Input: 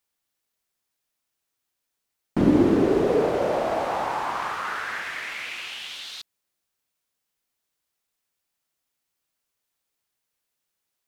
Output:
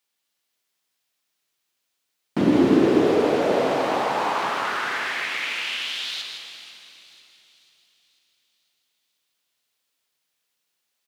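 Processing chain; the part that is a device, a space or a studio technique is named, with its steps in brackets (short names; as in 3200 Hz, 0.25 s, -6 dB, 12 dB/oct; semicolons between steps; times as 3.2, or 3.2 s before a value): PA in a hall (HPF 140 Hz 12 dB/oct; bell 3400 Hz +6 dB 1.7 oct; echo 0.16 s -7 dB; reverb RT60 3.4 s, pre-delay 79 ms, DRR 5.5 dB); 5.3–6.13 HPF 130 Hz; thin delay 0.493 s, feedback 50%, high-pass 5500 Hz, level -11 dB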